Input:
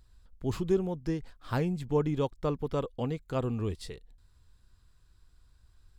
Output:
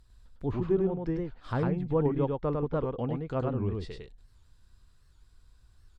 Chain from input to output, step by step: low-pass that closes with the level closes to 1.7 kHz, closed at -30 dBFS; delay 102 ms -3 dB; warped record 78 rpm, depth 160 cents

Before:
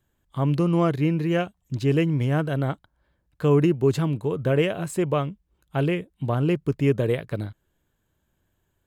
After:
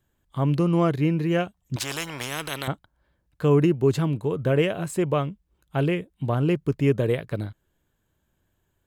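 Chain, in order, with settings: 1.76–2.68 s: spectrum-flattening compressor 4:1

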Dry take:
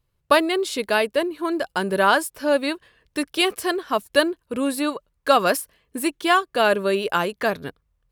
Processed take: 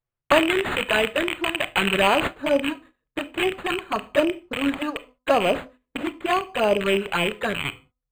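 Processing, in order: rattle on loud lows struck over -46 dBFS, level -8 dBFS; de-hum 254.9 Hz, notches 5; touch-sensitive flanger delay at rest 8 ms, full sweep at -13.5 dBFS; gate -46 dBFS, range -16 dB; treble shelf 2.6 kHz +9 dB, from 2.31 s -2.5 dB; reverberation, pre-delay 26 ms, DRR 14 dB; decimation joined by straight lines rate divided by 8×; trim +1.5 dB

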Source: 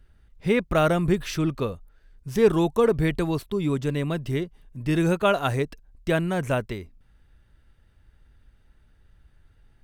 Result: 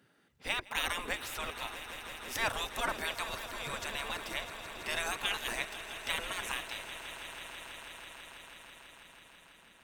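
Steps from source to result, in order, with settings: 3.34–3.74 s: static phaser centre 310 Hz, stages 4; spectral gate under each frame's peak -20 dB weak; echo with a slow build-up 164 ms, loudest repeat 5, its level -15 dB; trim +2 dB

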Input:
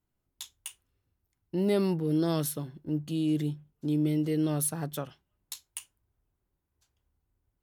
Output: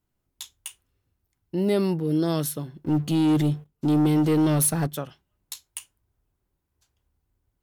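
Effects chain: 2.84–4.87 s: waveshaping leveller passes 2; trim +3.5 dB

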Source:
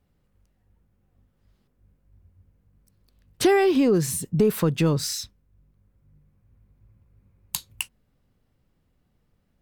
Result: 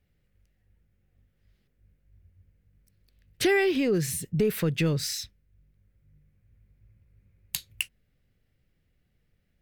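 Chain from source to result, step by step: graphic EQ 250/1000/2000/8000 Hz -5/-12/+7/-3 dB; trim -1.5 dB

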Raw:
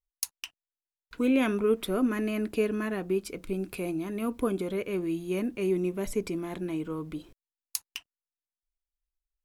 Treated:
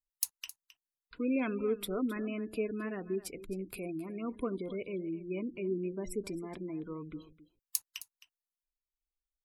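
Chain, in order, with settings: spectral gate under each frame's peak -25 dB strong; treble shelf 6.2 kHz +9 dB; on a send: delay 264 ms -16 dB; on the sum: trim -7 dB

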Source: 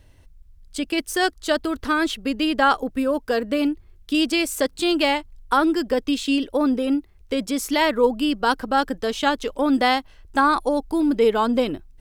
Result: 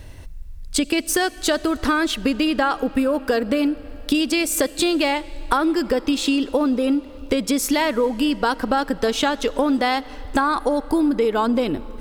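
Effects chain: band-stop 3.1 kHz, Q 23; in parallel at -1 dB: peak limiter -15 dBFS, peak gain reduction 9 dB; on the sum: compression, threshold -25 dBFS, peak gain reduction 14.5 dB; algorithmic reverb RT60 4.5 s, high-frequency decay 0.85×, pre-delay 25 ms, DRR 18.5 dB; trim +7.5 dB

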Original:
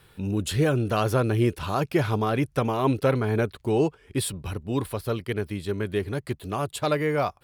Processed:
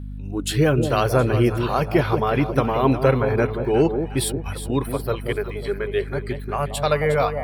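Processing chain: spectral noise reduction 15 dB; echo whose repeats swap between lows and highs 180 ms, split 820 Hz, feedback 64%, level -7 dB; hum 50 Hz, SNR 11 dB; trim +4.5 dB

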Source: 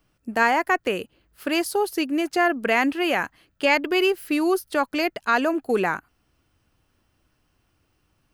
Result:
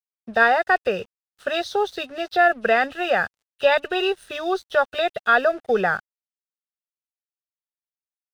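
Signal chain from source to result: knee-point frequency compression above 2.5 kHz 1.5:1; static phaser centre 1.5 kHz, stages 8; crossover distortion -54 dBFS; trim +6 dB

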